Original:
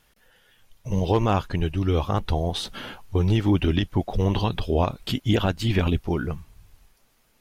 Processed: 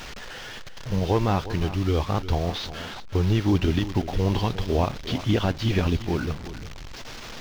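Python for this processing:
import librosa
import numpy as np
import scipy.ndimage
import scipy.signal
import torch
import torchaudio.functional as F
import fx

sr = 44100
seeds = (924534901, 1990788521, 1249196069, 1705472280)

y = fx.delta_mod(x, sr, bps=32000, step_db=-31.0)
y = fx.quant_dither(y, sr, seeds[0], bits=8, dither='none')
y = y + 10.0 ** (-13.5 / 20.0) * np.pad(y, (int(357 * sr / 1000.0), 0))[:len(y)]
y = y * librosa.db_to_amplitude(-1.0)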